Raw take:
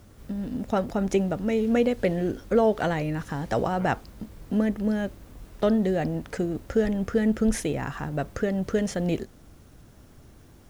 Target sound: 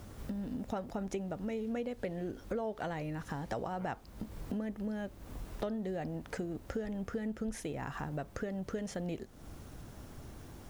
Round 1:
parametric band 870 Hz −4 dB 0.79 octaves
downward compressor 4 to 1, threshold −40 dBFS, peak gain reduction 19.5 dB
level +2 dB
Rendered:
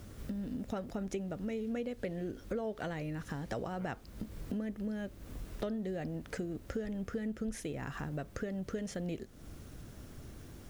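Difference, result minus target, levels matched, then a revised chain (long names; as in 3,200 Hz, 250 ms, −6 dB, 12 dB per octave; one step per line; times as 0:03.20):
1,000 Hz band −3.5 dB
parametric band 870 Hz +3 dB 0.79 octaves
downward compressor 4 to 1, threshold −40 dBFS, peak gain reduction 20 dB
level +2 dB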